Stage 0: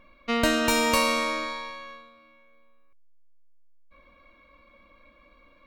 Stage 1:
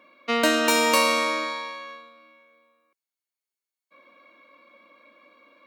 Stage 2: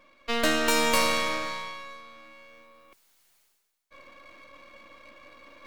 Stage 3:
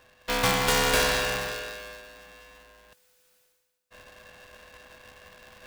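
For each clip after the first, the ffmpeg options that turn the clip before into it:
ffmpeg -i in.wav -af "highpass=frequency=250:width=0.5412,highpass=frequency=250:width=1.3066,volume=3dB" out.wav
ffmpeg -i in.wav -af "aeval=exprs='if(lt(val(0),0),0.251*val(0),val(0))':channel_layout=same,areverse,acompressor=mode=upward:threshold=-40dB:ratio=2.5,areverse" out.wav
ffmpeg -i in.wav -af "aeval=exprs='val(0)*sgn(sin(2*PI*500*n/s))':channel_layout=same" out.wav

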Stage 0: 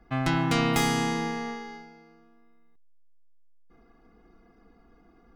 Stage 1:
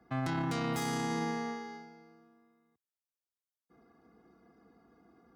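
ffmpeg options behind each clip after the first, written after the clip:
ffmpeg -i in.wav -af "highpass=frequency=80:width=0.5412,highpass=frequency=80:width=1.3066,equalizer=frequency=2700:width_type=o:width=0.77:gain=-6,alimiter=limit=-22.5dB:level=0:latency=1:release=13,volume=-3dB" out.wav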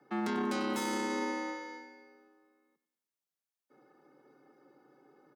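ffmpeg -i in.wav -af "afreqshift=82,aecho=1:1:94|188|282|376|470:0.2|0.0998|0.0499|0.0249|0.0125" out.wav

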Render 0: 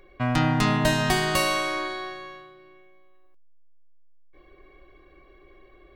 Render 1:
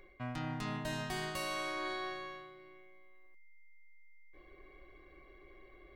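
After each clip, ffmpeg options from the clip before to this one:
ffmpeg -i in.wav -af "areverse,acompressor=threshold=-30dB:ratio=16,areverse,aeval=exprs='val(0)+0.000891*sin(2*PI*2100*n/s)':channel_layout=same,volume=-5dB" out.wav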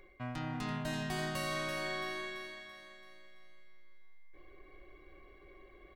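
ffmpeg -i in.wav -af "aecho=1:1:335|670|1005|1340|1675|2010:0.473|0.232|0.114|0.0557|0.0273|0.0134" out.wav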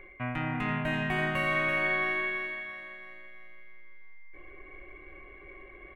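ffmpeg -i in.wav -af "highshelf=frequency=3400:width_type=q:width=3:gain=-13,volume=6dB" out.wav

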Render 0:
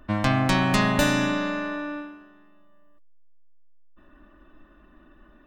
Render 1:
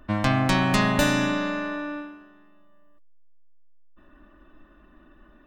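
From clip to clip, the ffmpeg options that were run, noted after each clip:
ffmpeg -i in.wav -af anull out.wav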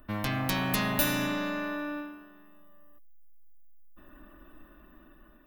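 ffmpeg -i in.wav -filter_complex "[0:a]acrossover=split=2000[link_01][link_02];[link_01]asoftclip=type=tanh:threshold=-21dB[link_03];[link_02]aexciter=amount=4.5:drive=9.8:freq=11000[link_04];[link_03][link_04]amix=inputs=2:normalize=0,dynaudnorm=framelen=530:gausssize=5:maxgain=6dB,volume=-5dB" out.wav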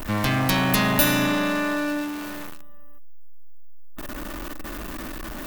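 ffmpeg -i in.wav -af "aeval=exprs='val(0)+0.5*0.0178*sgn(val(0))':channel_layout=same,volume=6.5dB" out.wav

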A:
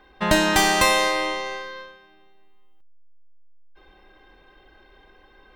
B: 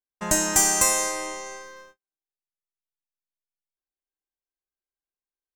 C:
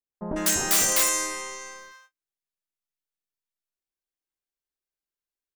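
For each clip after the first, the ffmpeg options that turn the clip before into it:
ffmpeg -i in.wav -af "agate=range=-44dB:threshold=-42dB:ratio=16:detection=peak,highshelf=frequency=5100:width_type=q:width=3:gain=11,volume=-7dB" out.wav
ffmpeg -i in.wav -filter_complex "[0:a]aeval=exprs='(mod(4.73*val(0)+1,2)-1)/4.73':channel_layout=same,acrossover=split=870[link_01][link_02];[link_02]adelay=150[link_03];[link_01][link_03]amix=inputs=2:normalize=0" out.wav

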